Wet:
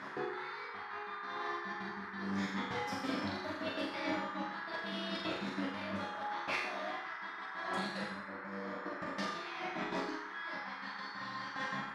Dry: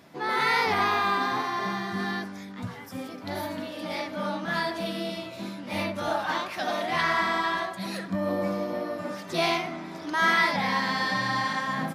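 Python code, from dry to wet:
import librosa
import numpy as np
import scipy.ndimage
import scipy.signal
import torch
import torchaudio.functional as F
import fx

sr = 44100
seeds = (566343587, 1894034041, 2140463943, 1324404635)

p1 = fx.fade_out_tail(x, sr, length_s=0.71)
p2 = fx.low_shelf(p1, sr, hz=170.0, db=11.0, at=(1.83, 2.39))
p3 = fx.over_compress(p2, sr, threshold_db=-38.0, ratio=-1.0)
p4 = fx.bandpass_edges(p3, sr, low_hz=130.0, high_hz=5400.0)
p5 = fx.step_gate(p4, sr, bpm=183, pattern='x.x.xxxx.x.', floor_db=-60.0, edge_ms=4.5)
p6 = fx.resonator_bank(p5, sr, root=37, chord='sus4', decay_s=0.64)
p7 = p6 + fx.room_flutter(p6, sr, wall_m=7.0, rt60_s=0.51, dry=0)
p8 = fx.dmg_noise_band(p7, sr, seeds[0], low_hz=870.0, high_hz=1900.0, level_db=-60.0)
y = F.gain(torch.from_numpy(p8), 12.5).numpy()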